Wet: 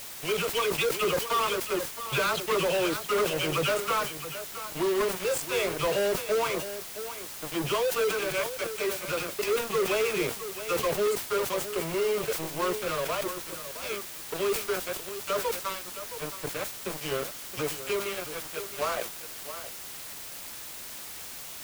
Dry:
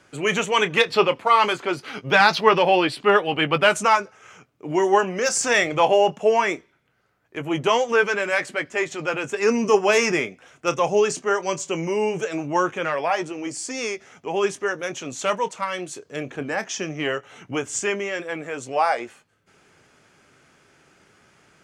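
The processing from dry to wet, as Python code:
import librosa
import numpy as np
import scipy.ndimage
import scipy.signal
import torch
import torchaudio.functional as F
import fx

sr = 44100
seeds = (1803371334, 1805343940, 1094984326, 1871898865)

p1 = scipy.signal.sosfilt(scipy.signal.butter(4, 64.0, 'highpass', fs=sr, output='sos'), x)
p2 = fx.low_shelf(p1, sr, hz=250.0, db=11.0)
p3 = fx.fixed_phaser(p2, sr, hz=1200.0, stages=8)
p4 = fx.dispersion(p3, sr, late='lows', ms=62.0, hz=1300.0)
p5 = np.sign(p4) * np.maximum(np.abs(p4) - 10.0 ** (-28.5 / 20.0), 0.0)
p6 = fx.leveller(p5, sr, passes=2)
p7 = 10.0 ** (-18.0 / 20.0) * np.tanh(p6 / 10.0 ** (-18.0 / 20.0))
p8 = p7 + fx.echo_single(p7, sr, ms=668, db=-12.0, dry=0)
p9 = fx.quant_dither(p8, sr, seeds[0], bits=6, dither='triangular')
p10 = fx.sustainer(p9, sr, db_per_s=99.0)
y = p10 * 10.0 ** (-5.0 / 20.0)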